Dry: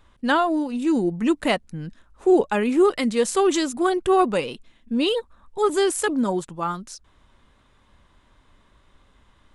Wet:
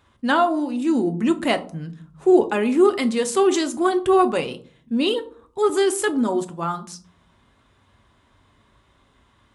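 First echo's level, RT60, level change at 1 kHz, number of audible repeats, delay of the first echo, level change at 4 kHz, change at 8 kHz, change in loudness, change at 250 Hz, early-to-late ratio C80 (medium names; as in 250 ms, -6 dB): no echo, 0.50 s, +1.0 dB, no echo, no echo, +0.5 dB, +0.5 dB, +1.5 dB, +1.5 dB, 20.5 dB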